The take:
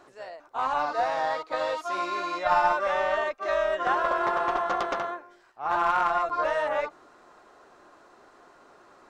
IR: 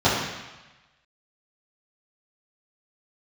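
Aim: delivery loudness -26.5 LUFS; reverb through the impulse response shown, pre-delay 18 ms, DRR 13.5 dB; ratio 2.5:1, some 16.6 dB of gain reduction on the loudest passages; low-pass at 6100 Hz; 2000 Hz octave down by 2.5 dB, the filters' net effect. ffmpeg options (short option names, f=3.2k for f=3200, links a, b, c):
-filter_complex "[0:a]lowpass=6.1k,equalizer=f=2k:t=o:g=-3.5,acompressor=threshold=-45dB:ratio=2.5,asplit=2[a][b];[1:a]atrim=start_sample=2205,adelay=18[c];[b][c]afir=irnorm=-1:irlink=0,volume=-34dB[d];[a][d]amix=inputs=2:normalize=0,volume=14.5dB"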